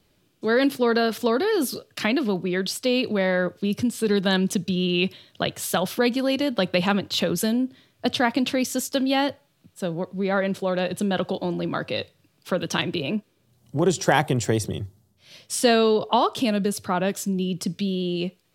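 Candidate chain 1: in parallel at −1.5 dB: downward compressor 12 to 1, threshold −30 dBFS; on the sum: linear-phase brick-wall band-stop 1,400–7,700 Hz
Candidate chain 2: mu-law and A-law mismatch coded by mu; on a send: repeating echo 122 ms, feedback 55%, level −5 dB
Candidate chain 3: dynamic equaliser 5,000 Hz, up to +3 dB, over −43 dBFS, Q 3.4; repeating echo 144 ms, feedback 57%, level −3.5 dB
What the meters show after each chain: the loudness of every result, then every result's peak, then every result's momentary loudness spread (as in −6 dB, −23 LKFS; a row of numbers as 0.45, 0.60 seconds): −23.0, −22.0, −22.0 LKFS; −5.5, −4.0, −1.5 dBFS; 8, 9, 9 LU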